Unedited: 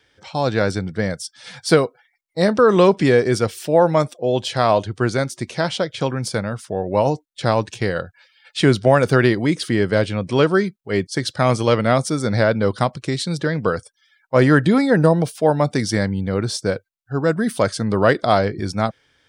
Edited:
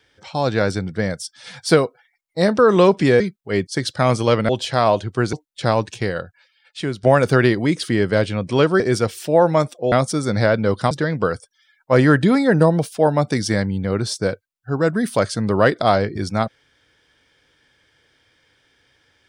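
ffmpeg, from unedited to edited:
ffmpeg -i in.wav -filter_complex "[0:a]asplit=8[link_01][link_02][link_03][link_04][link_05][link_06][link_07][link_08];[link_01]atrim=end=3.202[link_09];[link_02]atrim=start=10.598:end=11.892[link_10];[link_03]atrim=start=4.318:end=5.162[link_11];[link_04]atrim=start=7.128:end=8.83,asetpts=PTS-STARTPTS,afade=type=out:start_time=0.532:duration=1.17:silence=0.223872[link_12];[link_05]atrim=start=8.83:end=10.602,asetpts=PTS-STARTPTS,afade=type=in:duration=0.004:curve=hsin:silence=0.223872[link_13];[link_06]atrim=start=3.198:end=4.322[link_14];[link_07]atrim=start=11.888:end=12.882[link_15];[link_08]atrim=start=13.338[link_16];[link_09][link_10]acrossfade=duration=0.004:curve1=hsin:curve2=hsin[link_17];[link_17][link_11]acrossfade=duration=0.004:curve1=hsin:curve2=hsin[link_18];[link_12][link_13]concat=n=2:v=0:a=1[link_19];[link_18][link_19]acrossfade=duration=0.004:curve1=hsin:curve2=hsin[link_20];[link_20][link_14]acrossfade=duration=0.004:curve1=hsin:curve2=hsin[link_21];[link_21][link_15]acrossfade=duration=0.004:curve1=hsin:curve2=hsin[link_22];[link_22][link_16]acrossfade=duration=0.004:curve1=hsin:curve2=hsin" out.wav

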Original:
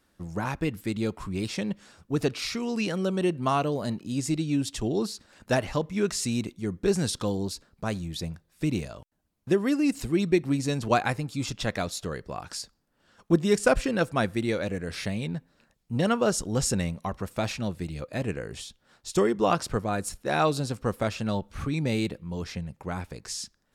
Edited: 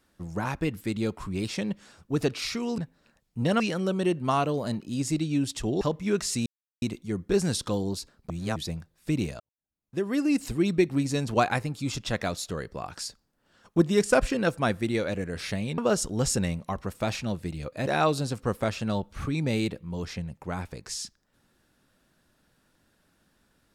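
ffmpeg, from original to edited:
ffmpeg -i in.wav -filter_complex "[0:a]asplit=10[link_01][link_02][link_03][link_04][link_05][link_06][link_07][link_08][link_09][link_10];[link_01]atrim=end=2.782[link_11];[link_02]atrim=start=15.318:end=16.142[link_12];[link_03]atrim=start=2.778:end=4.992[link_13];[link_04]atrim=start=5.708:end=6.36,asetpts=PTS-STARTPTS,afade=type=out:start_time=0.648:duration=0.004:curve=hsin,apad=pad_dur=0.36[link_14];[link_05]atrim=start=6.36:end=7.842,asetpts=PTS-STARTPTS,afade=type=in:duration=0.004:curve=hsin[link_15];[link_06]atrim=start=7.838:end=8.102,asetpts=PTS-STARTPTS,areverse[link_16];[link_07]atrim=start=8.098:end=8.94,asetpts=PTS-STARTPTS,afade=type=out:start_time=0.838:duration=0.004:curve=hsin[link_17];[link_08]atrim=start=8.94:end=15.322,asetpts=PTS-STARTPTS,afade=type=in:duration=0.84:curve=qua[link_18];[link_09]atrim=start=16.138:end=18.232[link_19];[link_10]atrim=start=20.258[link_20];[link_11][link_12]acrossfade=duration=0.004:curve1=hsin:curve2=hsin[link_21];[link_21][link_13]acrossfade=duration=0.004:curve1=hsin:curve2=hsin[link_22];[link_14][link_15]concat=n=2:v=0:a=1[link_23];[link_22][link_23]acrossfade=duration=0.004:curve1=hsin:curve2=hsin[link_24];[link_24][link_16]acrossfade=duration=0.004:curve1=hsin:curve2=hsin[link_25];[link_17][link_18]concat=n=2:v=0:a=1[link_26];[link_25][link_26]acrossfade=duration=0.004:curve1=hsin:curve2=hsin[link_27];[link_27][link_19]acrossfade=duration=0.004:curve1=hsin:curve2=hsin[link_28];[link_28][link_20]acrossfade=duration=0.004:curve1=hsin:curve2=hsin" out.wav

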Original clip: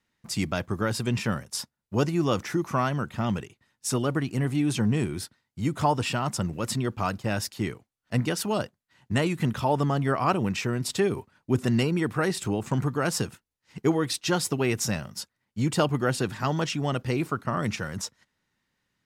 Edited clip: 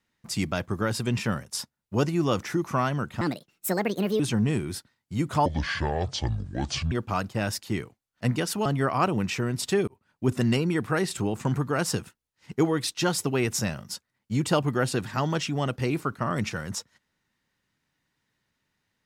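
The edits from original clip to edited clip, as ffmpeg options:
ffmpeg -i in.wav -filter_complex "[0:a]asplit=7[link_01][link_02][link_03][link_04][link_05][link_06][link_07];[link_01]atrim=end=3.214[link_08];[link_02]atrim=start=3.21:end=4.66,asetpts=PTS-STARTPTS,asetrate=64827,aresample=44100[link_09];[link_03]atrim=start=4.656:end=5.924[link_10];[link_04]atrim=start=5.92:end=6.81,asetpts=PTS-STARTPTS,asetrate=26901,aresample=44100[link_11];[link_05]atrim=start=6.806:end=8.552[link_12];[link_06]atrim=start=9.918:end=11.14,asetpts=PTS-STARTPTS,afade=type=out:start_time=1.218:duration=0.004:curve=hsin[link_13];[link_07]atrim=start=11.14,asetpts=PTS-STARTPTS,afade=type=in:duration=0.42[link_14];[link_08][link_09]acrossfade=duration=0.004:curve1=hsin:curve2=hsin[link_15];[link_15][link_10]acrossfade=duration=0.004:curve1=hsin:curve2=hsin[link_16];[link_16][link_11]acrossfade=duration=0.004:curve1=hsin:curve2=hsin[link_17];[link_17][link_12]acrossfade=duration=0.004:curve1=hsin:curve2=hsin[link_18];[link_13][link_14]concat=n=2:v=0:a=1[link_19];[link_18][link_19]acrossfade=duration=0.004:curve1=hsin:curve2=hsin" out.wav

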